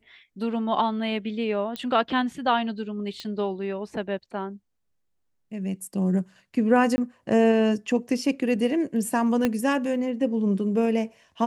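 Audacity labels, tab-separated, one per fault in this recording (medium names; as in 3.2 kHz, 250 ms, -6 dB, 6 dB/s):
1.760000	1.760000	pop -16 dBFS
3.200000	3.200000	pop -21 dBFS
6.960000	6.980000	dropout 20 ms
9.450000	9.450000	pop -10 dBFS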